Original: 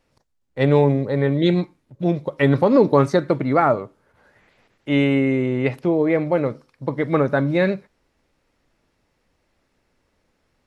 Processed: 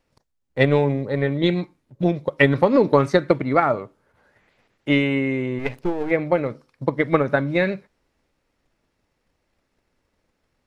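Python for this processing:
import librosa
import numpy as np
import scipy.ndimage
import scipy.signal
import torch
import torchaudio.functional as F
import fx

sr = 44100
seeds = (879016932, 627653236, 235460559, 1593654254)

y = fx.halfwave_gain(x, sr, db=-12.0, at=(5.58, 6.1), fade=0.02)
y = fx.dynamic_eq(y, sr, hz=2300.0, q=1.1, threshold_db=-36.0, ratio=4.0, max_db=5)
y = fx.transient(y, sr, attack_db=8, sustain_db=2)
y = F.gain(torch.from_numpy(y), -4.5).numpy()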